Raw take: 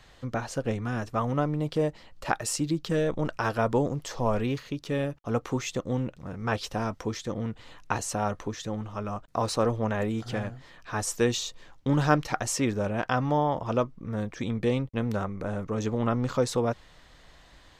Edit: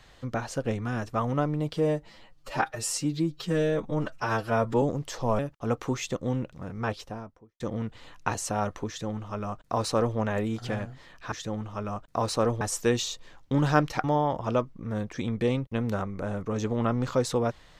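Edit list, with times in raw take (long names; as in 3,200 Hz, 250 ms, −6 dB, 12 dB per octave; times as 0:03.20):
0:01.73–0:03.79: time-stretch 1.5×
0:04.36–0:05.03: remove
0:06.26–0:07.24: fade out and dull
0:08.52–0:09.81: duplicate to 0:10.96
0:12.39–0:13.26: remove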